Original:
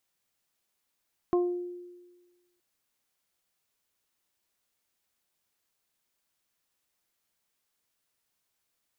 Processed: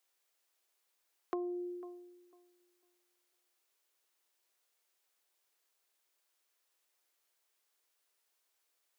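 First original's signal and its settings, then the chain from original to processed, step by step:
harmonic partials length 1.27 s, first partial 354 Hz, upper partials −10/−11 dB, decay 1.35 s, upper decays 0.50/0.28 s, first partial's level −20.5 dB
Butterworth high-pass 330 Hz
feedback echo with a low-pass in the loop 499 ms, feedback 20%, level −20 dB
downward compressor 5 to 1, threshold −36 dBFS

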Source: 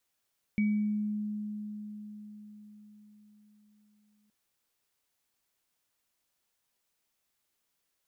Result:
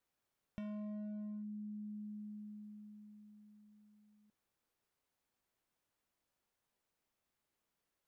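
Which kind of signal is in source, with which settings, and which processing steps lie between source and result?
inharmonic partials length 3.72 s, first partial 210 Hz, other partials 2,270 Hz, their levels −11.5 dB, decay 4.98 s, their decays 0.63 s, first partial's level −23.5 dB
gain into a clipping stage and back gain 34 dB
high-shelf EQ 2,100 Hz −11 dB
downward compressor 6 to 1, threshold −44 dBFS

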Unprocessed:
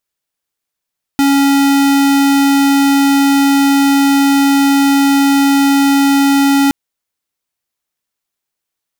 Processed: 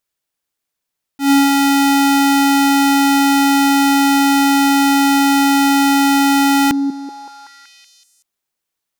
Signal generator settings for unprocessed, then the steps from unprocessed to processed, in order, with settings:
tone square 278 Hz −10 dBFS 5.52 s
volume swells 122 ms
on a send: echo through a band-pass that steps 189 ms, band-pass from 270 Hz, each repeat 0.7 octaves, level −6.5 dB

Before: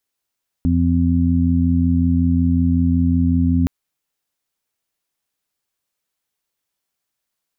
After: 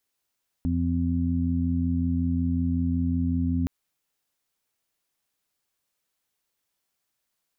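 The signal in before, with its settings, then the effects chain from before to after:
steady harmonic partials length 3.02 s, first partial 85.4 Hz, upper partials −3/0.5 dB, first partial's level −17 dB
brickwall limiter −19 dBFS

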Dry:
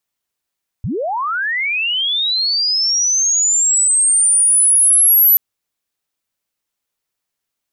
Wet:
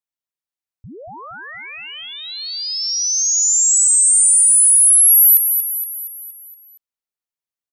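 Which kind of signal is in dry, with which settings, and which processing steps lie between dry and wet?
glide linear 76 Hz → 12,000 Hz −18 dBFS → −7 dBFS 4.53 s
noise gate −16 dBFS, range −15 dB
on a send: repeating echo 234 ms, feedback 53%, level −7.5 dB

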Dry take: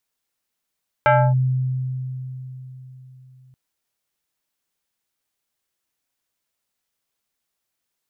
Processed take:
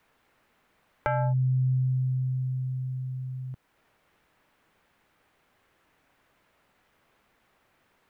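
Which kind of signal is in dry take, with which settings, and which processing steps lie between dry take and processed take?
two-operator FM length 2.48 s, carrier 129 Hz, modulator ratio 5.67, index 2.1, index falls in 0.28 s linear, decay 3.97 s, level −10.5 dB
brickwall limiter −20.5 dBFS
multiband upward and downward compressor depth 70%

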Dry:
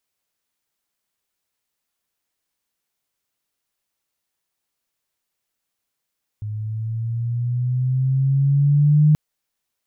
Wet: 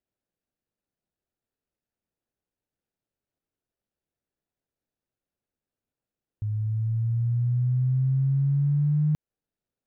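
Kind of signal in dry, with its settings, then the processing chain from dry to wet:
pitch glide with a swell sine, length 2.73 s, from 105 Hz, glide +6.5 semitones, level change +15 dB, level −10 dB
running median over 41 samples
downward compressor 10 to 1, threshold −21 dBFS

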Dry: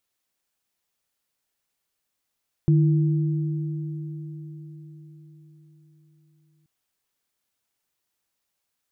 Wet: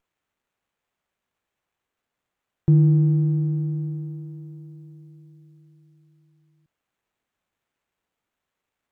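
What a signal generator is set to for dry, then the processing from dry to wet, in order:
inharmonic partials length 3.98 s, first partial 152 Hz, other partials 330 Hz, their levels −10 dB, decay 4.95 s, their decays 4.80 s, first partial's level −14 dB
dynamic equaliser 160 Hz, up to +4 dB, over −34 dBFS
windowed peak hold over 9 samples

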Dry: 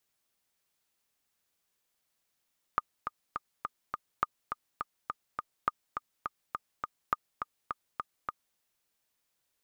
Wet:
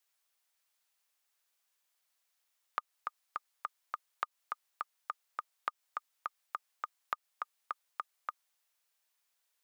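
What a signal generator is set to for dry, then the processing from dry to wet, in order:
click track 207 BPM, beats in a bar 5, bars 4, 1,220 Hz, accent 7 dB −13 dBFS
downward compressor, threshold −30 dBFS
high-pass filter 700 Hz 12 dB per octave

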